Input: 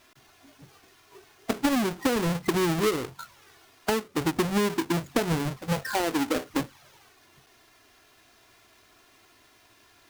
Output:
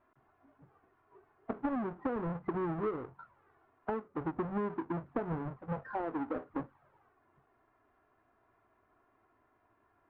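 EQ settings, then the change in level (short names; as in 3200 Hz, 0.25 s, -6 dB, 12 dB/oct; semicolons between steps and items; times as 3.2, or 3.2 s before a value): ladder low-pass 1600 Hz, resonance 25%; -4.0 dB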